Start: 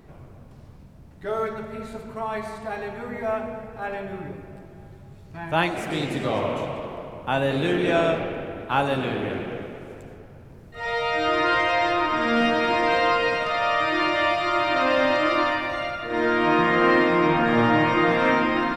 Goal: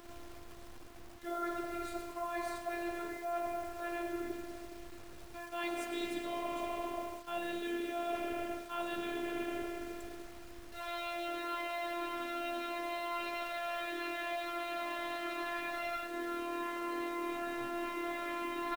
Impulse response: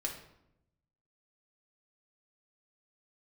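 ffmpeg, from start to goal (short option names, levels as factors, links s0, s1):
-af "aecho=1:1:139:0.0944,afftfilt=real='hypot(re,im)*cos(PI*b)':imag='0':win_size=512:overlap=0.75,areverse,acompressor=threshold=0.0224:ratio=20,areverse,highshelf=f=3300:g=3,acrusher=bits=8:mix=0:aa=0.000001"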